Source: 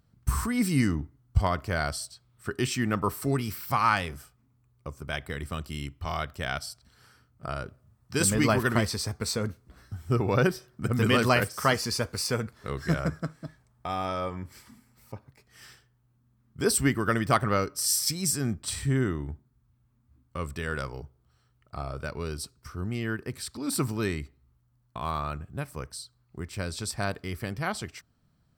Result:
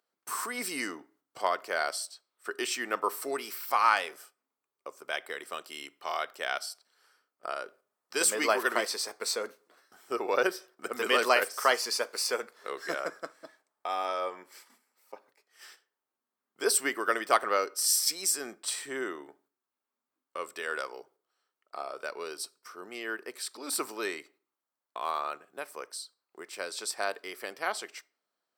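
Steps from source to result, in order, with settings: gate -52 dBFS, range -7 dB; HPF 400 Hz 24 dB/oct; on a send: reverb RT60 0.45 s, pre-delay 6 ms, DRR 21.5 dB

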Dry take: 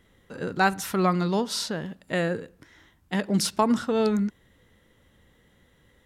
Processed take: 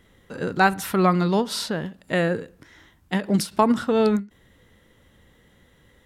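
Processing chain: dynamic EQ 6200 Hz, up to -6 dB, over -49 dBFS, Q 1.5; ending taper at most 240 dB/s; gain +4 dB

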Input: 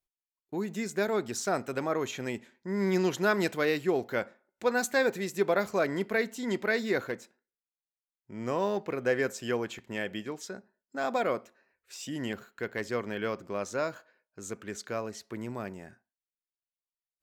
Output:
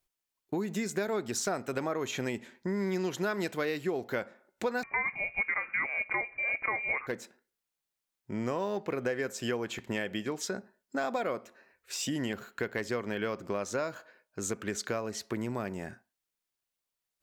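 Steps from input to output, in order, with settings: compressor 5:1, threshold -38 dBFS, peak gain reduction 15.5 dB; 4.83–7.07 inverted band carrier 2600 Hz; gain +8 dB

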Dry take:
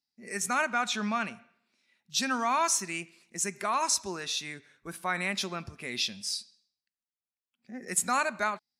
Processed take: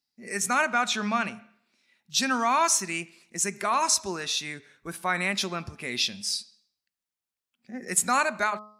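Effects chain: de-hum 211.6 Hz, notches 6; gain +4 dB

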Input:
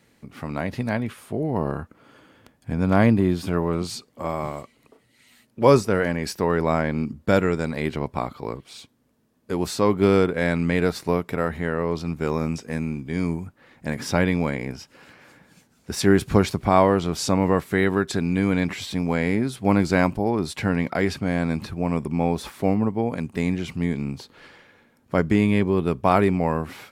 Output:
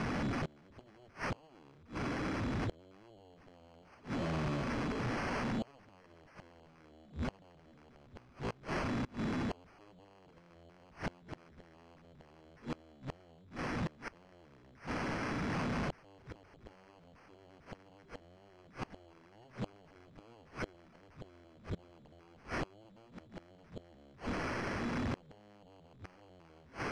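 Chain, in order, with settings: zero-crossing step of -21.5 dBFS; band shelf 960 Hz -10 dB 2.4 oct; notch 2800 Hz, Q 9.6; limiter -16 dBFS, peak gain reduction 10 dB; added harmonics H 3 -6 dB, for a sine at -13 dBFS; sample-and-hold 12×; flipped gate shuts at -31 dBFS, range -26 dB; air absorption 120 m; gain +1.5 dB

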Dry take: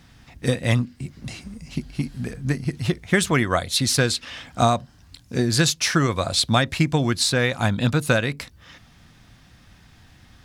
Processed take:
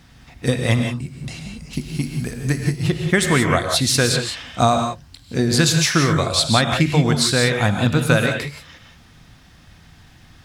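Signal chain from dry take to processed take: 1.73–2.76 high shelf 5300 Hz +10 dB; non-linear reverb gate 0.2 s rising, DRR 4 dB; gain +2 dB

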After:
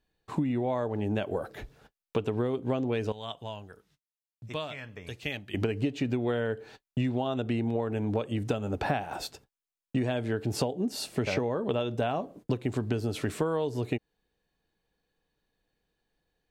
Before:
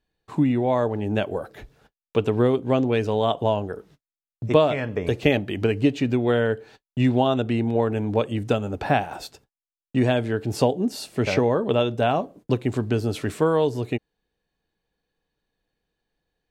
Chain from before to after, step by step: 3.12–5.54 passive tone stack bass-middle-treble 5-5-5; compressor 10:1, threshold -25 dBFS, peak gain reduction 12 dB

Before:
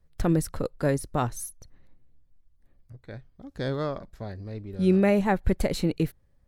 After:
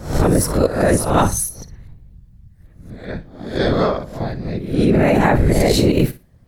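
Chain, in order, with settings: spectral swells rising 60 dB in 0.48 s; whisperiser; in parallel at +2.5 dB: negative-ratio compressor -24 dBFS, ratio -0.5; on the sum: flutter echo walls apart 10 m, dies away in 0.25 s; gain +3 dB

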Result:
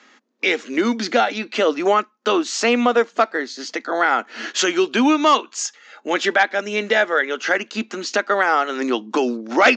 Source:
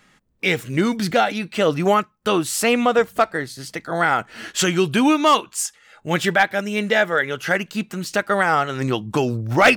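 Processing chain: Chebyshev band-pass 230–6800 Hz, order 5; in parallel at +1.5 dB: compressor, threshold -28 dBFS, peak gain reduction 17.5 dB; on the sum: gain -1 dB

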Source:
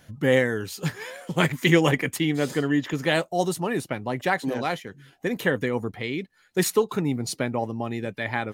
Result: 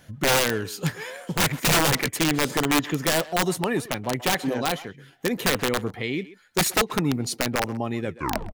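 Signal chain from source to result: tape stop at the end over 0.48 s; wrapped overs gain 15.5 dB; speakerphone echo 0.13 s, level -15 dB; gain +1.5 dB

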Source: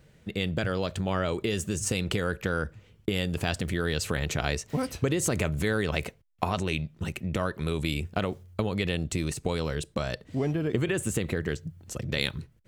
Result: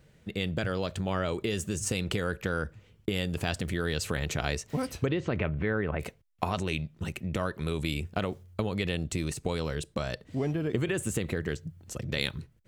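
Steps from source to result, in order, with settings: 5.05–5.99 LPF 4000 Hz -> 1900 Hz 24 dB/oct; gain -2 dB

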